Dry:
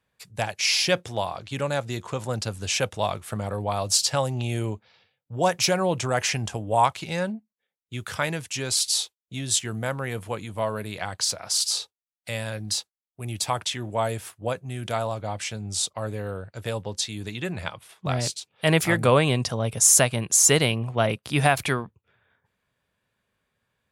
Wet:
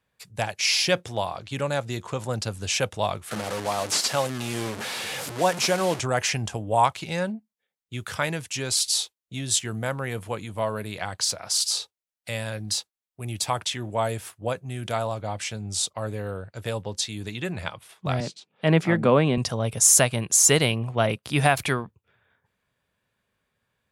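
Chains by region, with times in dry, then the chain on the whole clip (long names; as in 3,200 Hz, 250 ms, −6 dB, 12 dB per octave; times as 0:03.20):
0:03.31–0:06.00: linear delta modulator 64 kbit/s, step −25.5 dBFS + high-pass filter 170 Hz
0:18.20–0:19.38: high-pass with resonance 190 Hz, resonance Q 1.9 + head-to-tape spacing loss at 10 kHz 20 dB
whole clip: no processing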